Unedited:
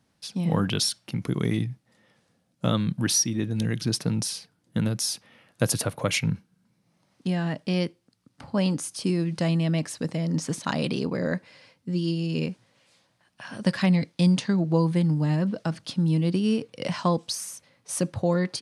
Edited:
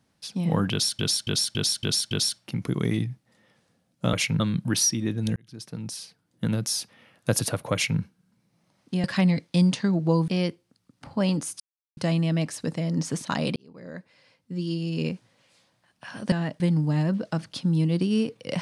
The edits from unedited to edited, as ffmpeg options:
ffmpeg -i in.wav -filter_complex "[0:a]asplit=16[link_01][link_02][link_03][link_04][link_05][link_06][link_07][link_08][link_09][link_10][link_11][link_12][link_13][link_14][link_15][link_16];[link_01]atrim=end=0.992[link_17];[link_02]atrim=start=0.708:end=0.992[link_18];[link_03]atrim=start=0.708:end=0.992[link_19];[link_04]atrim=start=0.708:end=0.992[link_20];[link_05]atrim=start=0.708:end=0.992[link_21];[link_06]atrim=start=0.708:end=2.732[link_22];[link_07]atrim=start=6.058:end=6.332[link_23];[link_08]atrim=start=2.728:end=3.69,asetpts=PTS-STARTPTS,afade=type=out:start_time=0.958:duration=0.004:curve=hsin[link_24];[link_09]atrim=start=3.69:end=7.372,asetpts=PTS-STARTPTS,afade=type=in:duration=1.23[link_25];[link_10]atrim=start=13.688:end=14.932[link_26];[link_11]atrim=start=7.648:end=8.97,asetpts=PTS-STARTPTS,afade=type=out:start_time=1.318:duration=0.004:curve=hsin[link_27];[link_12]atrim=start=8.97:end=9.34,asetpts=PTS-STARTPTS,volume=0[link_28];[link_13]atrim=start=9.34:end=10.93,asetpts=PTS-STARTPTS,afade=type=in:duration=0.004:curve=hsin,afade=type=out:start_time=1.586:duration=0.004:curve=hsin[link_29];[link_14]atrim=start=10.93:end=13.692,asetpts=PTS-STARTPTS,afade=type=in:duration=1.53[link_30];[link_15]atrim=start=7.368:end=7.652[link_31];[link_16]atrim=start=14.928[link_32];[link_17][link_18]acrossfade=duration=0.004:curve1=hsin:curve2=hsin[link_33];[link_33][link_19]acrossfade=duration=0.004:curve1=hsin:curve2=hsin[link_34];[link_34][link_20]acrossfade=duration=0.004:curve1=hsin:curve2=hsin[link_35];[link_35][link_21]acrossfade=duration=0.004:curve1=hsin:curve2=hsin[link_36];[link_36][link_22]acrossfade=duration=0.004:curve1=hsin:curve2=hsin[link_37];[link_37][link_23]acrossfade=duration=0.004:curve1=hsin:curve2=hsin[link_38];[link_24][link_25]concat=n=2:v=0:a=1[link_39];[link_38][link_39]acrossfade=duration=0.004:curve1=hsin:curve2=hsin[link_40];[link_40][link_26]acrossfade=duration=0.004:curve1=hsin:curve2=hsin[link_41];[link_27][link_28][link_29][link_30]concat=n=4:v=0:a=1[link_42];[link_41][link_42]acrossfade=duration=0.004:curve1=hsin:curve2=hsin[link_43];[link_43][link_31]acrossfade=duration=0.004:curve1=hsin:curve2=hsin[link_44];[link_44][link_32]acrossfade=duration=0.004:curve1=hsin:curve2=hsin" out.wav

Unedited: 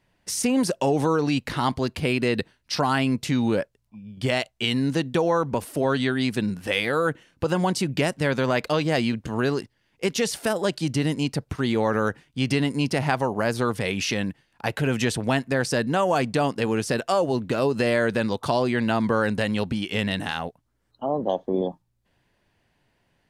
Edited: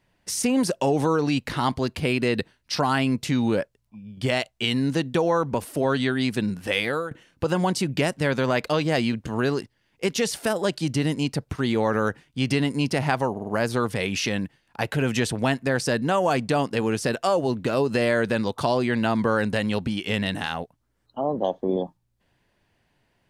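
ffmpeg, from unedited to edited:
ffmpeg -i in.wav -filter_complex "[0:a]asplit=5[link_01][link_02][link_03][link_04][link_05];[link_01]atrim=end=7.11,asetpts=PTS-STARTPTS,afade=type=out:start_time=6.79:duration=0.32:curve=qsin:silence=0.125893[link_06];[link_02]atrim=start=7.11:end=13.372,asetpts=PTS-STARTPTS,afade=type=in:duration=0.004:curve=hsin:silence=0.125893[link_07];[link_03]atrim=start=13.318:end=13.372[link_08];[link_04]atrim=start=13.318:end=13.372[link_09];[link_05]atrim=start=13.318[link_10];[link_06][link_07]concat=n=2:v=0:a=1[link_11];[link_11][link_08]acrossfade=duration=0.004:curve1=hsin:curve2=hsin[link_12];[link_12][link_09]acrossfade=duration=0.004:curve1=hsin:curve2=hsin[link_13];[link_13][link_10]acrossfade=duration=0.004:curve1=hsin:curve2=hsin" out.wav

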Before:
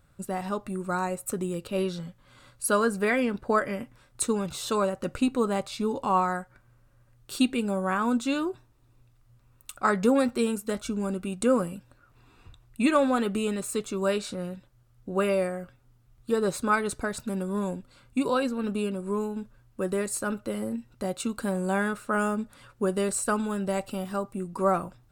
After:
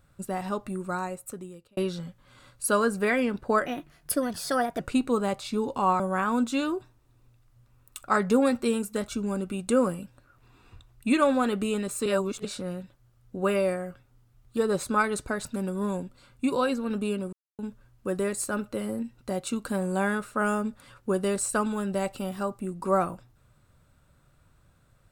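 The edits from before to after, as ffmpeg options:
ffmpeg -i in.wav -filter_complex "[0:a]asplit=9[link_01][link_02][link_03][link_04][link_05][link_06][link_07][link_08][link_09];[link_01]atrim=end=1.77,asetpts=PTS-STARTPTS,afade=type=out:start_time=0.7:duration=1.07[link_10];[link_02]atrim=start=1.77:end=3.664,asetpts=PTS-STARTPTS,afade=type=in:duration=0.004:curve=hsin[link_11];[link_03]atrim=start=3.66:end=5.07,asetpts=PTS-STARTPTS,asetrate=54684,aresample=44100[link_12];[link_04]atrim=start=5.066:end=6.272[link_13];[link_05]atrim=start=7.728:end=13.792[link_14];[link_06]atrim=start=13.788:end=14.182,asetpts=PTS-STARTPTS,areverse[link_15];[link_07]atrim=start=14.178:end=19.06,asetpts=PTS-STARTPTS,afade=type=out:start_time=4.878:duration=0.004:curve=hsin[link_16];[link_08]atrim=start=19.06:end=19.32,asetpts=PTS-STARTPTS,volume=0[link_17];[link_09]atrim=start=19.32,asetpts=PTS-STARTPTS,afade=type=in:duration=0.004:curve=hsin[link_18];[link_10][link_11]concat=n=2:v=0:a=1[link_19];[link_19][link_12]acrossfade=duration=0.004:curve1=hsin:curve2=hsin[link_20];[link_20][link_13]acrossfade=duration=0.004:curve1=hsin:curve2=hsin[link_21];[link_21][link_14]acrossfade=duration=0.004:curve1=hsin:curve2=hsin[link_22];[link_22][link_15]acrossfade=duration=0.004:curve1=hsin:curve2=hsin[link_23];[link_16][link_17][link_18]concat=n=3:v=0:a=1[link_24];[link_23][link_24]acrossfade=duration=0.004:curve1=hsin:curve2=hsin" out.wav

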